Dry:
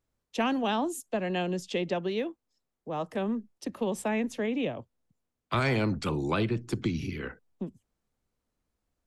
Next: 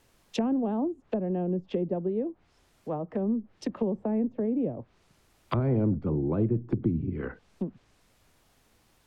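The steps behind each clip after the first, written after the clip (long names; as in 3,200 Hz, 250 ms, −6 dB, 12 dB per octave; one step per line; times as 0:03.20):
background noise pink −68 dBFS
treble cut that deepens with the level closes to 460 Hz, closed at −29 dBFS
level +3.5 dB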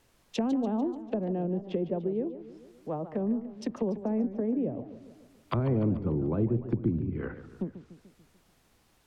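feedback echo with a swinging delay time 146 ms, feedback 55%, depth 217 cents, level −13 dB
level −1.5 dB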